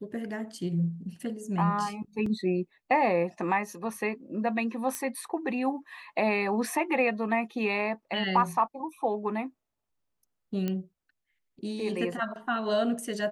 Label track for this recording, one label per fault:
2.260000	2.260000	gap 3.7 ms
4.950000	4.950000	pop -16 dBFS
10.680000	10.680000	pop -18 dBFS

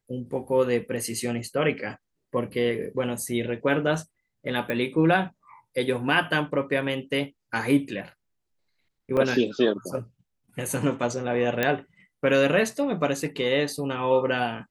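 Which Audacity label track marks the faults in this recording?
4.700000	4.700000	pop -16 dBFS
9.170000	9.170000	gap 3.4 ms
11.630000	11.630000	pop -9 dBFS

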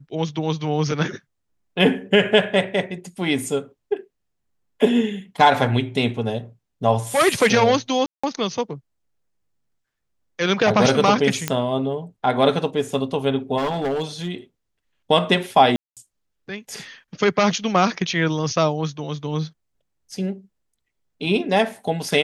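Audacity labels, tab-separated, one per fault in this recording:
8.060000	8.230000	gap 0.175 s
11.480000	11.480000	pop -5 dBFS
13.570000	14.310000	clipped -19.5 dBFS
15.760000	15.970000	gap 0.207 s

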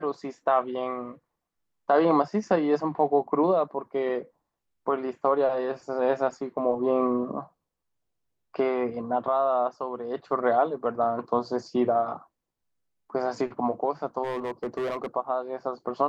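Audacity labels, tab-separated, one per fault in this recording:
14.230000	15.060000	clipped -26 dBFS

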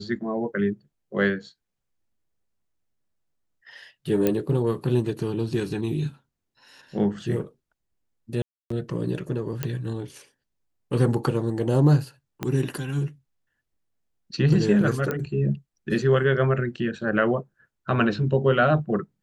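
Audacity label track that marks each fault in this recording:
4.270000	4.270000	pop -9 dBFS
8.420000	8.700000	gap 0.284 s
9.630000	9.630000	pop -12 dBFS
12.430000	12.430000	pop -13 dBFS
15.110000	15.110000	pop -14 dBFS

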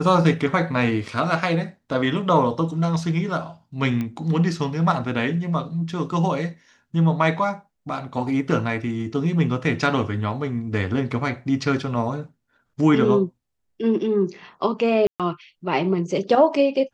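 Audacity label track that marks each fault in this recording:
4.010000	4.010000	pop -16 dBFS
15.070000	15.200000	gap 0.127 s

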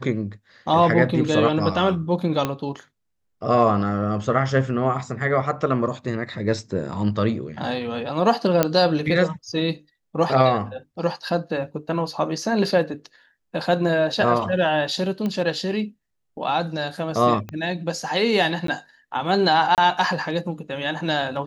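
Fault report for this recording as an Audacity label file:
2.450000	2.450000	pop -9 dBFS
8.630000	8.630000	pop -3 dBFS
15.260000	15.260000	pop -15 dBFS
17.490000	17.490000	pop -19 dBFS
18.670000	18.680000	gap 13 ms
19.750000	19.780000	gap 28 ms

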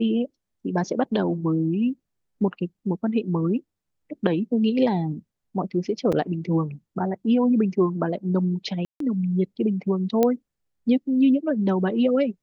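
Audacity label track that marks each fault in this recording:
6.120000	6.120000	gap 5 ms
8.850000	9.000000	gap 0.153 s
10.230000	10.230000	pop -8 dBFS

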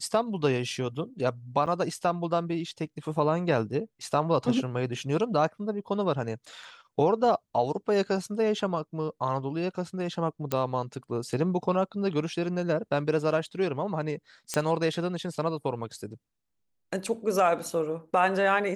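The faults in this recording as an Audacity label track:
1.660000	1.670000	gap 6.5 ms
10.520000	10.520000	pop -13 dBFS
14.540000	14.540000	pop -13 dBFS

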